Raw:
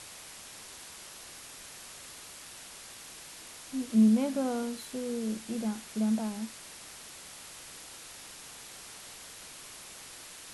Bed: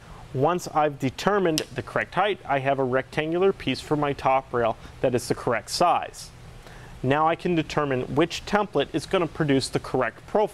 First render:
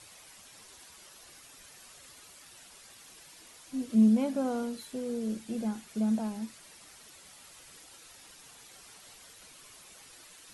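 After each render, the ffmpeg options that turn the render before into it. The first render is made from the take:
-af "afftdn=nr=9:nf=-48"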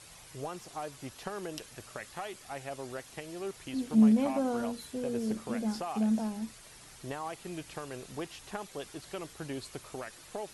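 -filter_complex "[1:a]volume=0.133[s0];[0:a][s0]amix=inputs=2:normalize=0"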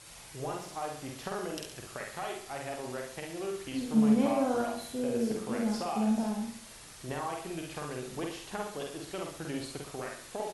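-filter_complex "[0:a]asplit=2[s0][s1];[s1]adelay=48,volume=0.75[s2];[s0][s2]amix=inputs=2:normalize=0,aecho=1:1:69|138|207|276|345:0.422|0.177|0.0744|0.0312|0.0131"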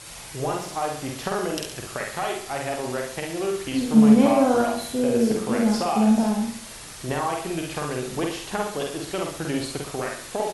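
-af "volume=3.16"

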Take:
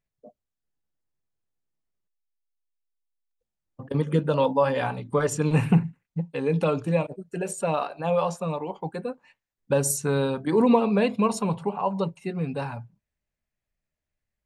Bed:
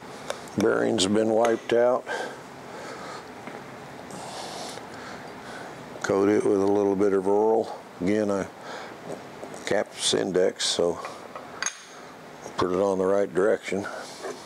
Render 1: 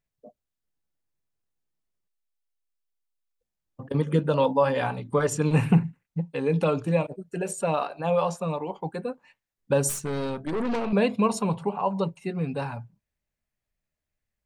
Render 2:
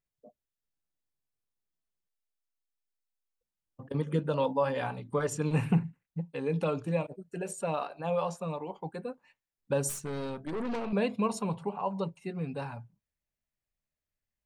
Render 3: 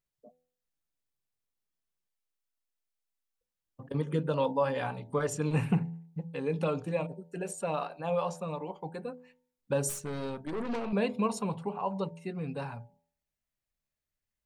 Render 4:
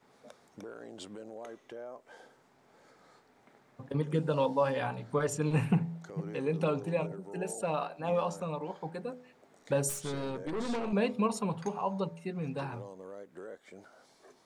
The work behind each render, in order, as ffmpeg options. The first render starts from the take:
-filter_complex "[0:a]asettb=1/sr,asplit=3[s0][s1][s2];[s0]atrim=end=9.894[s3];[s1]atrim=start=9.89:end=10.93,asetpts=PTS-STARTPTS,afade=t=in:d=0.004:c=qsin,afade=t=out:st=1.036:d=0.004:c=qsin,aeval=exprs='(tanh(17.8*val(0)+0.55)-tanh(0.55))/17.8':c=same[s4];[s2]atrim=start=10.926[s5];[s3][s4]acrossfade=d=0.004:c1=hsin:c2=qsin[s6];[s6][s5]acrossfade=d=0.004:c1=qsin:c2=hsin"
-af "volume=0.473"
-af "bandreject=f=83.13:t=h:w=4,bandreject=f=166.26:t=h:w=4,bandreject=f=249.39:t=h:w=4,bandreject=f=332.52:t=h:w=4,bandreject=f=415.65:t=h:w=4,bandreject=f=498.78:t=h:w=4,bandreject=f=581.91:t=h:w=4,bandreject=f=665.04:t=h:w=4,bandreject=f=748.17:t=h:w=4,bandreject=f=831.3:t=h:w=4,bandreject=f=914.43:t=h:w=4"
-filter_complex "[1:a]volume=0.0668[s0];[0:a][s0]amix=inputs=2:normalize=0"

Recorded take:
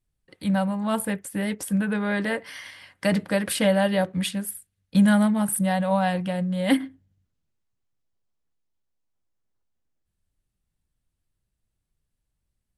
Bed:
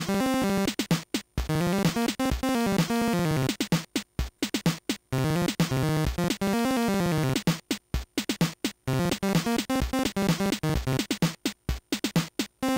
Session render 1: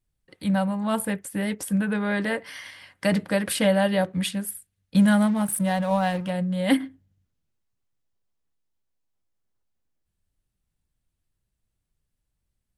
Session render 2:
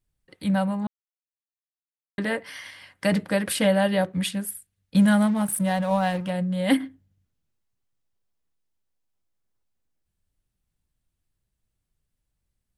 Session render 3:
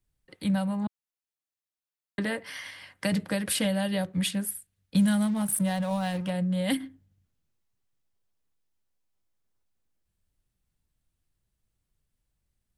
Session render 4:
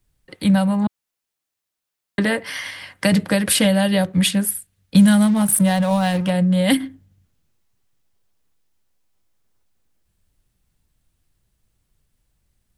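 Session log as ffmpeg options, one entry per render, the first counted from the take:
-filter_complex "[0:a]asettb=1/sr,asplit=3[s0][s1][s2];[s0]atrim=end=4.994[s3];[s1]atrim=start=4.99:end=6.3,asetpts=PTS-STARTPTS,afade=t=in:d=0.004:c=qsin,afade=t=out:st=1.306:d=0.004:c=qsin,aeval=exprs='sgn(val(0))*max(abs(val(0))-0.00841,0)':c=same[s4];[s2]atrim=start=6.296[s5];[s3][s4]acrossfade=d=0.004:c1=hsin:c2=qsin[s6];[s6][s5]acrossfade=d=0.004:c1=qsin:c2=hsin"
-filter_complex "[0:a]asplit=3[s0][s1][s2];[s0]atrim=end=0.87,asetpts=PTS-STARTPTS,afade=t=out:st=0.866:d=0.004:c=hsin[s3];[s1]atrim=start=0.87:end=2.18,asetpts=PTS-STARTPTS,volume=0[s4];[s2]atrim=start=2.18,asetpts=PTS-STARTPTS,afade=t=in:d=0.004:c=hsin[s5];[s3][s4][s5]concat=n=3:v=0:a=1"
-filter_complex "[0:a]acrossover=split=180|3000[s0][s1][s2];[s1]acompressor=threshold=0.0316:ratio=4[s3];[s0][s3][s2]amix=inputs=3:normalize=0"
-af "volume=3.35"

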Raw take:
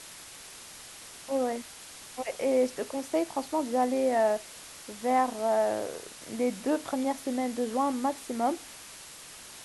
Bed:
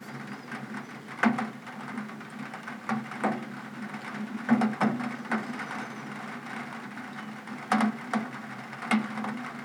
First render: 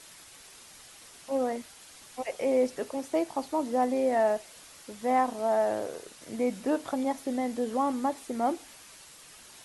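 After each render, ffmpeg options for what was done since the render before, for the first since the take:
-af "afftdn=nr=6:nf=-47"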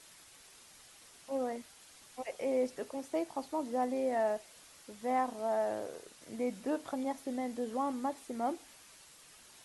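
-af "volume=0.473"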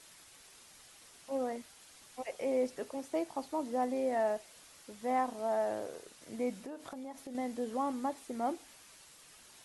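-filter_complex "[0:a]asettb=1/sr,asplit=3[s0][s1][s2];[s0]atrim=end=6.544[s3];[s1]atrim=start=6.54:end=7.35,asetpts=PTS-STARTPTS,afade=t=in:d=0.004:c=qsin,afade=t=out:st=0.806:d=0.004:c=qsin,acompressor=threshold=0.00891:ratio=6:attack=3.2:release=140:knee=1:detection=peak[s4];[s2]atrim=start=7.346[s5];[s3][s4]acrossfade=d=0.004:c1=hsin:c2=qsin[s6];[s6][s5]acrossfade=d=0.004:c1=qsin:c2=hsin"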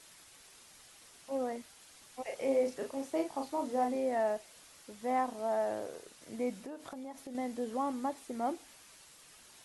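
-filter_complex "[0:a]asettb=1/sr,asplit=3[s0][s1][s2];[s0]atrim=end=2.224[s3];[s1]atrim=start=2.22:end=3.96,asetpts=PTS-STARTPTS,afade=t=in:d=0.004:c=qsin,afade=t=out:st=1.736:d=0.004:c=qsin,asplit=2[s4][s5];[s5]adelay=37,volume=0.631[s6];[s4][s6]amix=inputs=2:normalize=0,atrim=end_sample=76734[s7];[s2]atrim=start=3.956[s8];[s3][s7]acrossfade=d=0.004:c1=hsin:c2=qsin[s9];[s9][s8]acrossfade=d=0.004:c1=qsin:c2=hsin"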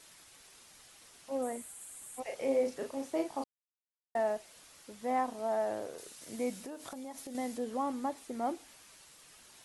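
-filter_complex "[0:a]asettb=1/sr,asplit=3[s0][s1][s2];[s0]atrim=end=1.424[s3];[s1]atrim=start=1.42:end=2.2,asetpts=PTS-STARTPTS,afade=t=in:d=0.004:c=qsin,afade=t=out:st=0.776:d=0.004:c=qsin,highshelf=f=6700:t=q:w=3:g=8[s4];[s2]atrim=start=2.196[s5];[s3][s4]acrossfade=d=0.004:c1=hsin:c2=qsin[s6];[s6][s5]acrossfade=d=0.004:c1=qsin:c2=hsin,asettb=1/sr,asplit=3[s7][s8][s9];[s7]atrim=end=5.984[s10];[s8]atrim=start=5.98:end=7.58,asetpts=PTS-STARTPTS,afade=t=in:d=0.004:c=qsin,afade=t=out:st=1.596:d=0.004:c=qsin,highshelf=f=4100:g=9[s11];[s9]atrim=start=7.576[s12];[s10][s11]acrossfade=d=0.004:c1=hsin:c2=qsin[s13];[s13][s12]acrossfade=d=0.004:c1=qsin:c2=hsin,asplit=3[s14][s15][s16];[s14]atrim=end=3.44,asetpts=PTS-STARTPTS,afade=t=out:st=3.436:d=0.004:c=hsin[s17];[s15]atrim=start=3.44:end=4.15,asetpts=PTS-STARTPTS,volume=0[s18];[s16]atrim=start=4.15,asetpts=PTS-STARTPTS,afade=t=in:d=0.004:c=hsin[s19];[s17][s18][s19]concat=n=3:v=0:a=1"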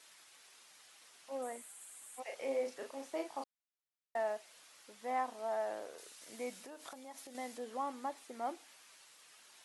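-af "highpass=f=900:p=1,highshelf=f=5700:g=-6.5"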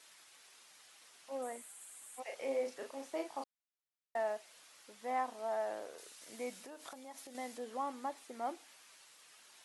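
-af anull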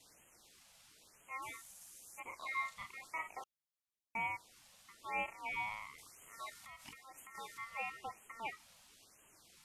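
-af "aeval=exprs='val(0)*sin(2*PI*1600*n/s)':c=same,afftfilt=real='re*(1-between(b*sr/1024,310*pow(4700/310,0.5+0.5*sin(2*PI*1*pts/sr))/1.41,310*pow(4700/310,0.5+0.5*sin(2*PI*1*pts/sr))*1.41))':imag='im*(1-between(b*sr/1024,310*pow(4700/310,0.5+0.5*sin(2*PI*1*pts/sr))/1.41,310*pow(4700/310,0.5+0.5*sin(2*PI*1*pts/sr))*1.41))':win_size=1024:overlap=0.75"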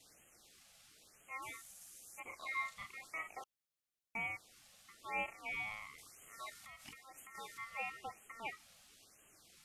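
-af "bandreject=f=960:w=5"

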